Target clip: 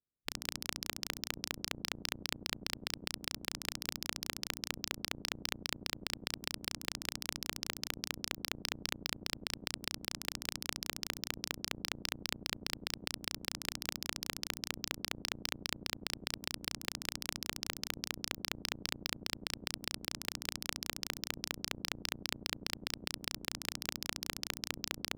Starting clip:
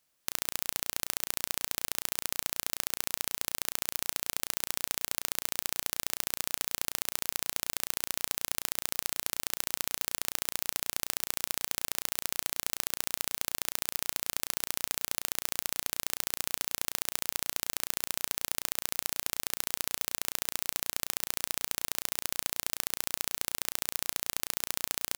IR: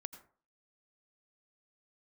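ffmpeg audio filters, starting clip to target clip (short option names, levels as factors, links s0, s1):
-filter_complex "[0:a]aemphasis=mode=reproduction:type=50fm,aeval=exprs='val(0)*sin(2*PI*1100*n/s)':c=same[s0];[1:a]atrim=start_sample=2205,afade=t=out:st=0.16:d=0.01,atrim=end_sample=7497[s1];[s0][s1]afir=irnorm=-1:irlink=0,afwtdn=0.00158,acrossover=split=410[s2][s3];[s2]crystalizer=i=5.5:c=0[s4];[s3]acrusher=bits=4:mix=0:aa=0.000001[s5];[s4][s5]amix=inputs=2:normalize=0,equalizer=f=5200:w=4.1:g=6,asoftclip=type=tanh:threshold=0.0501,alimiter=level_in=2.66:limit=0.0631:level=0:latency=1:release=54,volume=0.376,volume=6.31"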